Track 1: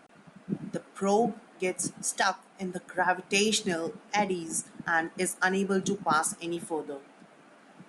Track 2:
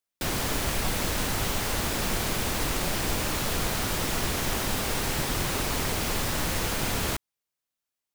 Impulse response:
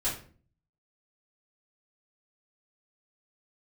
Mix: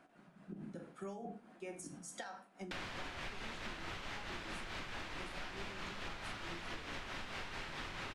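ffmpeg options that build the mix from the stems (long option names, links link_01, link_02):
-filter_complex "[0:a]acompressor=threshold=-29dB:ratio=6,highshelf=frequency=5000:gain=-7,volume=-10dB,asplit=2[link_01][link_02];[link_02]volume=-8dB[link_03];[1:a]lowpass=2700,tiltshelf=frequency=710:gain=-8.5,adelay=2500,volume=-2dB,asplit=2[link_04][link_05];[link_05]volume=-16.5dB[link_06];[2:a]atrim=start_sample=2205[link_07];[link_03][link_06]amix=inputs=2:normalize=0[link_08];[link_08][link_07]afir=irnorm=-1:irlink=0[link_09];[link_01][link_04][link_09]amix=inputs=3:normalize=0,acrossover=split=350[link_10][link_11];[link_11]acompressor=threshold=-32dB:ratio=6[link_12];[link_10][link_12]amix=inputs=2:normalize=0,tremolo=f=4.6:d=0.47,acompressor=threshold=-42dB:ratio=6"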